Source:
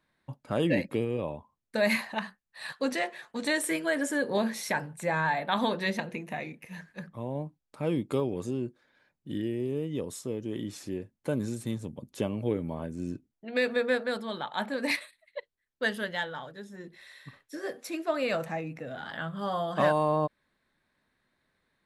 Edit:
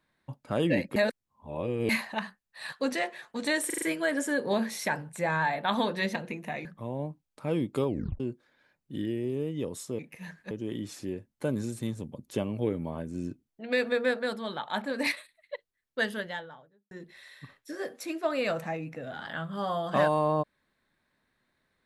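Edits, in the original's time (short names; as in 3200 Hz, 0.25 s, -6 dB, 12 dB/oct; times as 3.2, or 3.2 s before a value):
0.96–1.89 reverse
3.66 stutter 0.04 s, 5 plays
6.49–7.01 move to 10.35
8.24 tape stop 0.32 s
15.88–16.75 studio fade out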